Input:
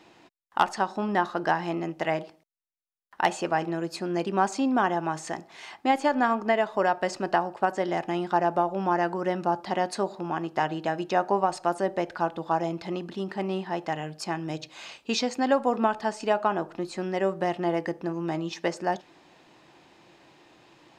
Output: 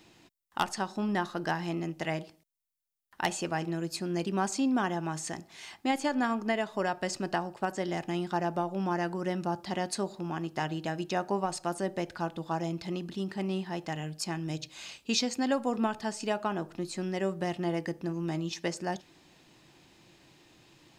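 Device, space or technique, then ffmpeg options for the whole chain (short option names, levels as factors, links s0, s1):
smiley-face EQ: -af "lowshelf=f=140:g=6,equalizer=f=800:t=o:w=2.8:g=-8.5,highshelf=f=8300:g=8.5"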